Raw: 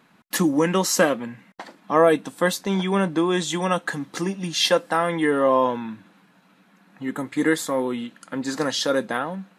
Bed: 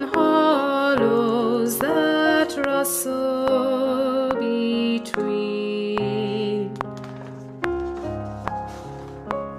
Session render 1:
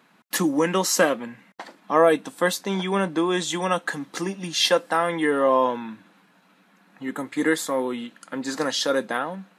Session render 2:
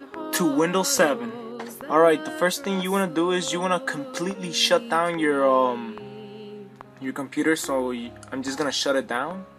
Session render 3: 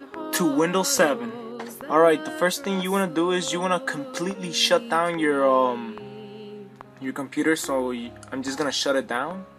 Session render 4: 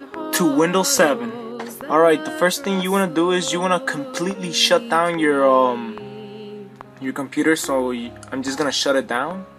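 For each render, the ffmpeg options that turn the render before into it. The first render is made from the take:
-af "highpass=110,lowshelf=f=150:g=-9"
-filter_complex "[1:a]volume=-15.5dB[a];[0:a][a]amix=inputs=2:normalize=0"
-af anull
-af "volume=4.5dB,alimiter=limit=-3dB:level=0:latency=1"

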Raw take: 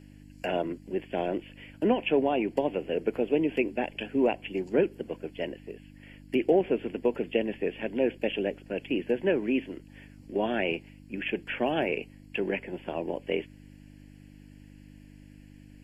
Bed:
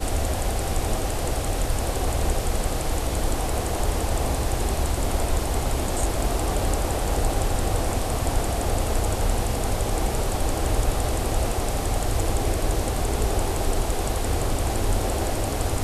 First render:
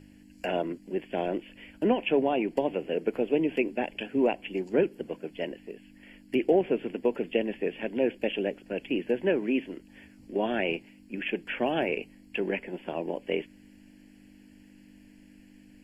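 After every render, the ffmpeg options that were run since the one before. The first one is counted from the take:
-af "bandreject=f=50:t=h:w=4,bandreject=f=100:t=h:w=4,bandreject=f=150:t=h:w=4"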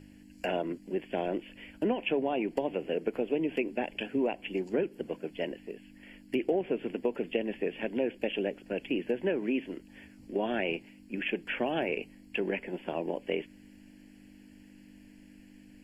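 -af "acompressor=threshold=-27dB:ratio=2.5"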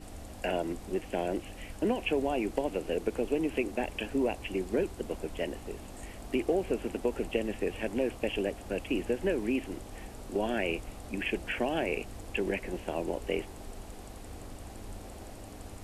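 -filter_complex "[1:a]volume=-21dB[a];[0:a][a]amix=inputs=2:normalize=0"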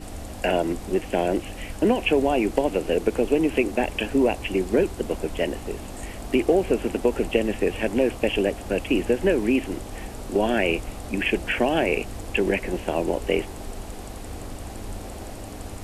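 -af "volume=9dB"

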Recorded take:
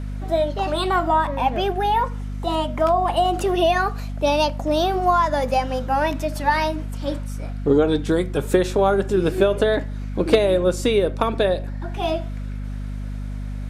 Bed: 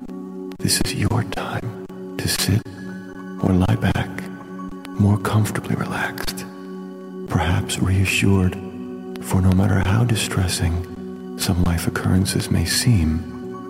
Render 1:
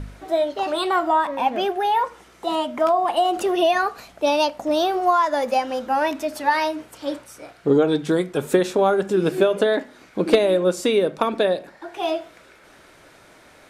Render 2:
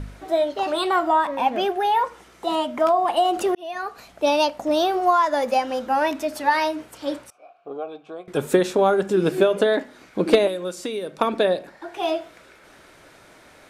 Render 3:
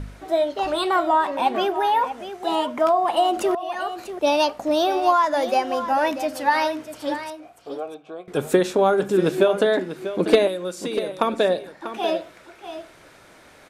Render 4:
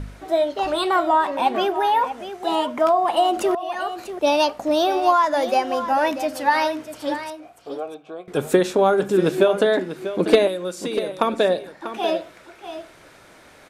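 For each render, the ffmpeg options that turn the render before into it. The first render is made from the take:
-af "bandreject=f=50:t=h:w=4,bandreject=f=100:t=h:w=4,bandreject=f=150:t=h:w=4,bandreject=f=200:t=h:w=4,bandreject=f=250:t=h:w=4"
-filter_complex "[0:a]asettb=1/sr,asplit=3[a][b][c];[a]atrim=end=7.304[d];[b]atrim=start=7.3:end=8.28,asetpts=PTS-STARTPTS,afade=t=in:d=0.004:c=qsin,afade=t=out:st=0.976:d=0.004:c=qsin,asplit=3[e][f][g];[e]bandpass=f=730:t=q:w=8,volume=0dB[h];[f]bandpass=f=1.09k:t=q:w=8,volume=-6dB[i];[g]bandpass=f=2.44k:t=q:w=8,volume=-9dB[j];[h][i][j]amix=inputs=3:normalize=0[k];[c]atrim=start=8.276[l];[d][k]acrossfade=d=0.004:c1=hsin:c2=qsin[m];[m][l]acrossfade=d=0.004:c1=qsin:c2=hsin,asettb=1/sr,asplit=3[n][o][p];[n]atrim=end=10.474[q];[o]atrim=start=10.47:end=11.21,asetpts=PTS-STARTPTS,afade=t=in:d=0.004:c=qsin,afade=t=out:st=0.736:d=0.004:c=qsin,acrossover=split=1400|4600[r][s][t];[r]acompressor=threshold=-28dB:ratio=4[u];[s]acompressor=threshold=-41dB:ratio=4[v];[t]acompressor=threshold=-40dB:ratio=4[w];[u][v][w]amix=inputs=3:normalize=0[x];[p]atrim=start=11.206[y];[q][x]acrossfade=d=0.004:c1=hsin:c2=qsin[z];[z][y]acrossfade=d=0.004:c1=qsin:c2=hsin,asplit=2[aa][ab];[aa]atrim=end=3.55,asetpts=PTS-STARTPTS,afade=t=out:st=3.546:d=0.004:c=hsin[ac];[ab]atrim=start=3.55,asetpts=PTS-STARTPTS,afade=t=in:d=0.69[ad];[ac][ad]concat=n=2:v=0:a=1"
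-af "aecho=1:1:642:0.266"
-af "volume=1dB"

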